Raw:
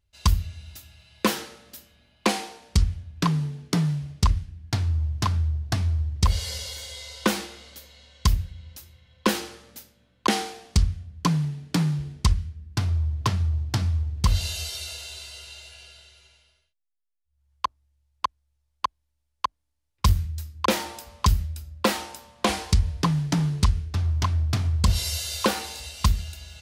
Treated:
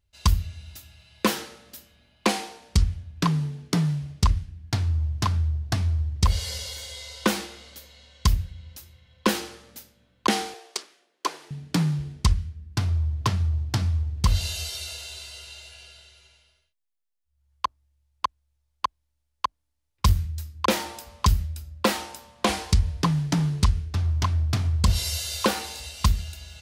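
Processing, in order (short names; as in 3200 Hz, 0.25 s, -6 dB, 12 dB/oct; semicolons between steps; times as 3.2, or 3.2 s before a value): 10.54–11.51 elliptic high-pass 350 Hz, stop band 70 dB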